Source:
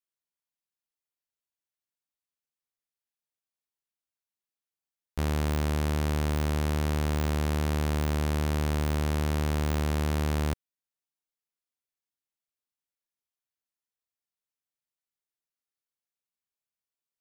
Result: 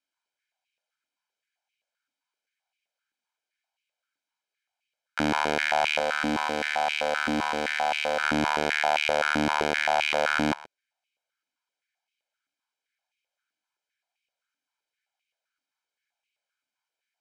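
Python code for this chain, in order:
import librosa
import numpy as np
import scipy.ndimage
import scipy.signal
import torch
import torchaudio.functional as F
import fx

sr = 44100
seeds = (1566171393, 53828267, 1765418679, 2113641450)

y = fx.lower_of_two(x, sr, delay_ms=3.9, at=(5.99, 8.23))
y = scipy.signal.sosfilt(scipy.signal.butter(2, 6700.0, 'lowpass', fs=sr, output='sos'), y)
y = fx.peak_eq(y, sr, hz=2200.0, db=5.0, octaves=1.2)
y = fx.notch(y, sr, hz=1900.0, q=13.0)
y = y + 0.68 * np.pad(y, (int(1.3 * sr / 1000.0), 0))[:len(y)]
y = y + 10.0 ** (-19.0 / 20.0) * np.pad(y, (int(124 * sr / 1000.0), 0))[:len(y)]
y = fx.filter_held_highpass(y, sr, hz=7.7, low_hz=290.0, high_hz=2500.0)
y = y * librosa.db_to_amplitude(4.0)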